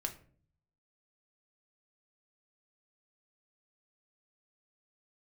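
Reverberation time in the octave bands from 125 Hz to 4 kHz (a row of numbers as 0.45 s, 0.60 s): 0.95 s, 0.75 s, 0.60 s, 0.40 s, 0.40 s, 0.30 s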